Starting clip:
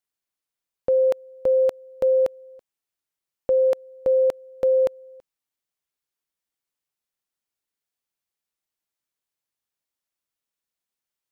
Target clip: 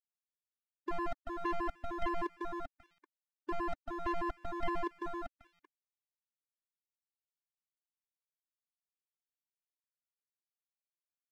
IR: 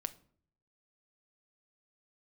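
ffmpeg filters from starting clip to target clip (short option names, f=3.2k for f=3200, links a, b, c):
-af "equalizer=f=82:t=o:w=1.6:g=9,aecho=1:1:389|778|1167:0.596|0.131|0.0288,adynamicsmooth=sensitivity=2.5:basefreq=720,lowpass=f=1.5k:p=1,aeval=exprs='(tanh(6.31*val(0)+0.25)-tanh(0.25))/6.31':c=same,afftfilt=real='hypot(re,im)*cos(PI*b)':imag='0':win_size=512:overlap=0.75,dynaudnorm=f=100:g=11:m=11.5dB,aeval=exprs='sgn(val(0))*max(abs(val(0))-0.0211,0)':c=same,equalizer=f=540:t=o:w=0.73:g=-13.5,afftfilt=real='re*gt(sin(2*PI*6.5*pts/sr)*(1-2*mod(floor(b*sr/1024/300),2)),0)':imag='im*gt(sin(2*PI*6.5*pts/sr)*(1-2*mod(floor(b*sr/1024/300),2)),0)':win_size=1024:overlap=0.75,volume=-5dB"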